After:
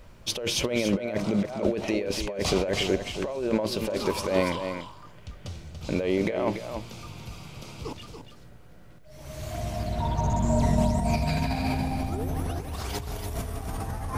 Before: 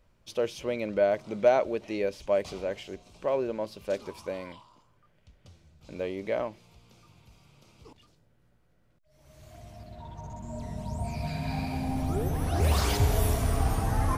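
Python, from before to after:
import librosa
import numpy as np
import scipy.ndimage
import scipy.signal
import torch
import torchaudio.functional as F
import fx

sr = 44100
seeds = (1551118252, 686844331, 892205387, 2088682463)

y = fx.over_compress(x, sr, threshold_db=-37.0, ratio=-1.0)
y = y + 10.0 ** (-8.0 / 20.0) * np.pad(y, (int(286 * sr / 1000.0), 0))[:len(y)]
y = y * librosa.db_to_amplitude(8.5)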